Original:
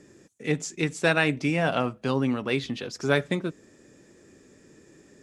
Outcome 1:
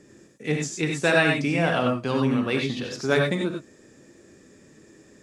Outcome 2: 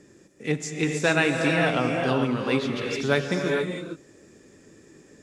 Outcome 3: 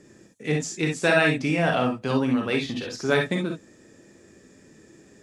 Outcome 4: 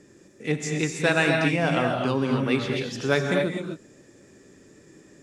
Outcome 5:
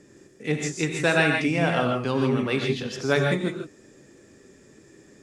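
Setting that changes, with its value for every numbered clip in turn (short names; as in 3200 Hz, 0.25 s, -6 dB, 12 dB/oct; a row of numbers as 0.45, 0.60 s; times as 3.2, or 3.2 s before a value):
non-linear reverb, gate: 120, 480, 80, 280, 180 ms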